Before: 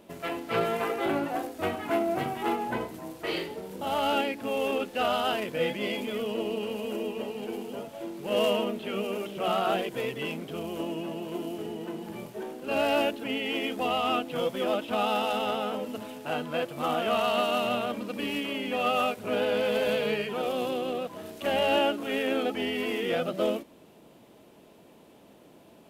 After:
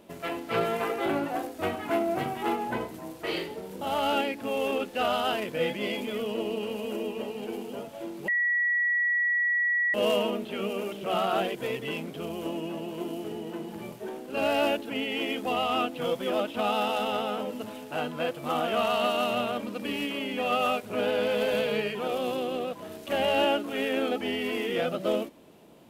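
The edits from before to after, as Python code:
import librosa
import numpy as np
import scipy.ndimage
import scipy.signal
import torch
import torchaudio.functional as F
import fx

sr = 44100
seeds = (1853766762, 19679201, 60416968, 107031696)

y = fx.edit(x, sr, fx.insert_tone(at_s=8.28, length_s=1.66, hz=1930.0, db=-22.5), tone=tone)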